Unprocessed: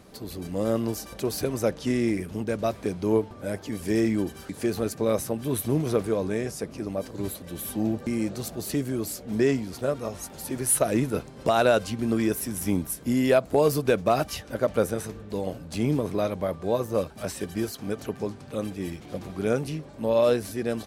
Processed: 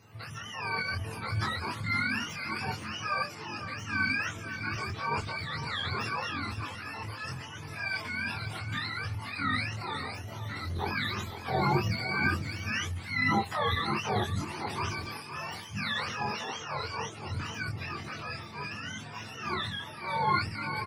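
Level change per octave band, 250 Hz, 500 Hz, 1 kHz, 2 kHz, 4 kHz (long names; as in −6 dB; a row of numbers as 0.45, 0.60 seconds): −12.0, −16.5, +1.0, +6.5, +3.5 decibels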